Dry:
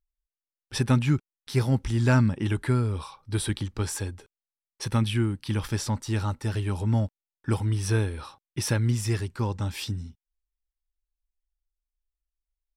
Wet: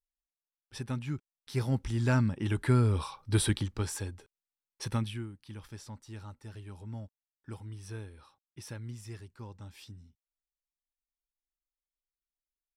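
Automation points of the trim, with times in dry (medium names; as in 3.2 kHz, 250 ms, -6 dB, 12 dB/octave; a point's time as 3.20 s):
1.02 s -13.5 dB
1.71 s -6 dB
2.38 s -6 dB
2.87 s +1 dB
3.41 s +1 dB
3.91 s -5.5 dB
4.92 s -5.5 dB
5.32 s -17.5 dB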